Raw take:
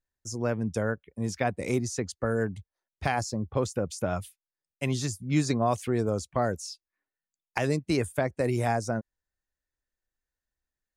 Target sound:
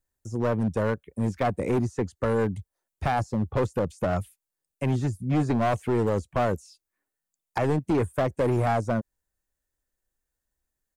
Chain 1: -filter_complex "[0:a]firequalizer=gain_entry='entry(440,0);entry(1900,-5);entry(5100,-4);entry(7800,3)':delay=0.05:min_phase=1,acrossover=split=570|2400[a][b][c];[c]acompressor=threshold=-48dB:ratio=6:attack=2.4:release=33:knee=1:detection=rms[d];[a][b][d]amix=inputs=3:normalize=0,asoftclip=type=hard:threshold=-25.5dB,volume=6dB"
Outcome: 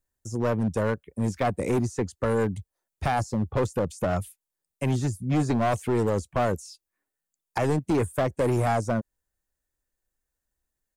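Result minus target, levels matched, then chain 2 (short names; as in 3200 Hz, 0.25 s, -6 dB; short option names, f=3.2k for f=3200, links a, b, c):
compressor: peak gain reduction -8.5 dB
-filter_complex "[0:a]firequalizer=gain_entry='entry(440,0);entry(1900,-5);entry(5100,-4);entry(7800,3)':delay=0.05:min_phase=1,acrossover=split=570|2400[a][b][c];[c]acompressor=threshold=-58dB:ratio=6:attack=2.4:release=33:knee=1:detection=rms[d];[a][b][d]amix=inputs=3:normalize=0,asoftclip=type=hard:threshold=-25.5dB,volume=6dB"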